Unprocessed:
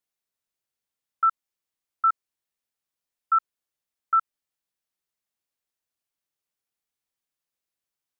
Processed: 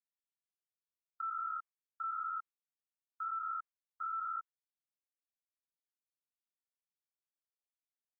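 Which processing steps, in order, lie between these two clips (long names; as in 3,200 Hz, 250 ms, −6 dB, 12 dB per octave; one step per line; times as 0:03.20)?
spectrum averaged block by block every 400 ms
Butterworth high-pass 1,000 Hz 36 dB per octave
noise gate with hold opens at −40 dBFS
low-pass filter 1,500 Hz 12 dB per octave
level −1.5 dB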